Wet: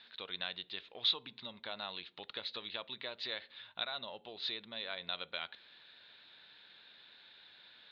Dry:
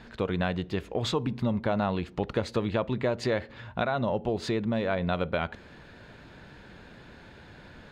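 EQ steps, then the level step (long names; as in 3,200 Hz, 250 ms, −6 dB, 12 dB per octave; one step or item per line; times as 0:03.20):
resonant band-pass 3,800 Hz, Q 6.5
high-frequency loss of the air 270 metres
+14.0 dB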